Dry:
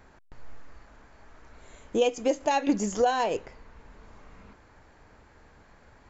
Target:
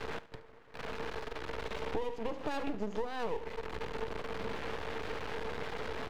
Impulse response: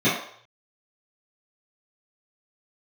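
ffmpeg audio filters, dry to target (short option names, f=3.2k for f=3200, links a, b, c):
-filter_complex "[0:a]aeval=exprs='val(0)+0.5*0.015*sgn(val(0))':c=same,highpass=f=120:p=1,agate=range=-7dB:threshold=-51dB:ratio=16:detection=peak,lowpass=f=3.7k:w=0.5412,lowpass=f=3.7k:w=1.3066,equalizer=f=450:t=o:w=0.2:g=15,acrossover=split=160|420|2600[a][b][c][d];[c]alimiter=level_in=1.5dB:limit=-24dB:level=0:latency=1:release=20,volume=-1.5dB[e];[a][b][e][d]amix=inputs=4:normalize=0,acompressor=threshold=-35dB:ratio=12,aeval=exprs='max(val(0),0)':c=same,aecho=1:1:72|144|216|288:0.141|0.0593|0.0249|0.0105,volume=6dB"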